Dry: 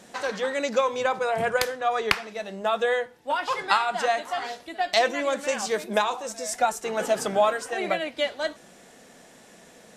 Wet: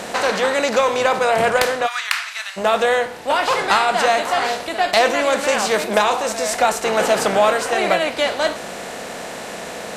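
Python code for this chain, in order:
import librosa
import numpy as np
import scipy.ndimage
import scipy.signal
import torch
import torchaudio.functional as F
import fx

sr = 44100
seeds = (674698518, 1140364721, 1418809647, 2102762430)

y = fx.bin_compress(x, sr, power=0.6)
y = fx.cheby_harmonics(y, sr, harmonics=(5,), levels_db=(-15,), full_scale_db=0.0)
y = fx.highpass(y, sr, hz=1300.0, slope=24, at=(1.86, 2.56), fade=0.02)
y = F.gain(torch.from_numpy(y), -1.0).numpy()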